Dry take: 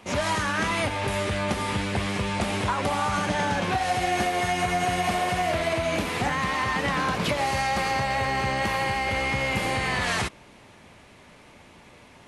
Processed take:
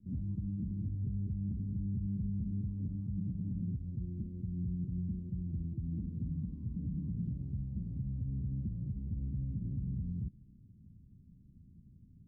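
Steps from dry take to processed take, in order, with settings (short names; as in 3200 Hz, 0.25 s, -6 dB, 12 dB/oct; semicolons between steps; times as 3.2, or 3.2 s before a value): inverse Chebyshev low-pass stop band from 660 Hz, stop band 60 dB; limiter -29.5 dBFS, peak gain reduction 10 dB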